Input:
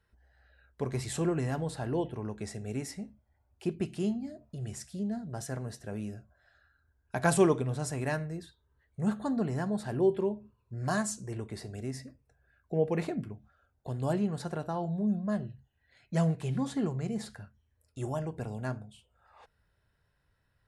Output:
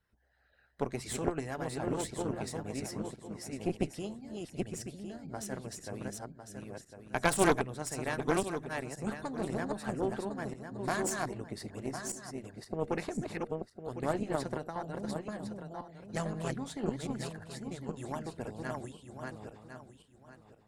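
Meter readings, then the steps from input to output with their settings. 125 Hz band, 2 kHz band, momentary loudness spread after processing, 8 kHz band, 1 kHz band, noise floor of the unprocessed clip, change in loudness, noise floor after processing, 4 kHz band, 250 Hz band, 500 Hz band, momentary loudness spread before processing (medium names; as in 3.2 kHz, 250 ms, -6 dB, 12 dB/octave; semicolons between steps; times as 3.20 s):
-6.5 dB, +2.0 dB, 12 LU, +1.5 dB, +1.5 dB, -75 dBFS, -3.5 dB, -64 dBFS, +2.0 dB, -4.0 dB, -2.5 dB, 15 LU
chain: backward echo that repeats 527 ms, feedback 48%, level -2 dB; harmonic-percussive split harmonic -12 dB; Chebyshev shaper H 4 -10 dB, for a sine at -13.5 dBFS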